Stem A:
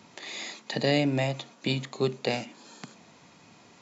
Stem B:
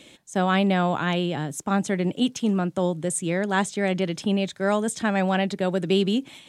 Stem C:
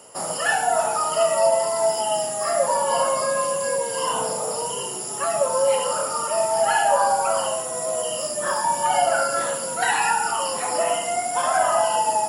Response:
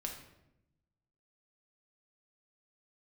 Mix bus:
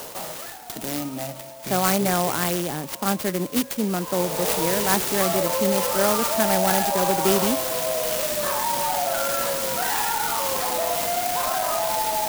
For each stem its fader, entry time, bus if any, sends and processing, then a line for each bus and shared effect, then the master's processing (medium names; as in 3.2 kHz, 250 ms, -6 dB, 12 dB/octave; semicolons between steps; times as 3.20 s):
-8.5 dB, 0.00 s, send -8.5 dB, drifting ripple filter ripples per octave 0.53, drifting -0.55 Hz, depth 10 dB
+2.0 dB, 1.35 s, no send, high-pass 270 Hz 6 dB/octave
-0.5 dB, 0.00 s, no send, peak limiter -16.5 dBFS, peak gain reduction 9 dB; level flattener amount 50%; auto duck -18 dB, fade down 0.60 s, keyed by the first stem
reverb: on, RT60 0.85 s, pre-delay 5 ms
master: peaking EQ 4 kHz +6 dB 0.8 oct; sampling jitter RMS 0.096 ms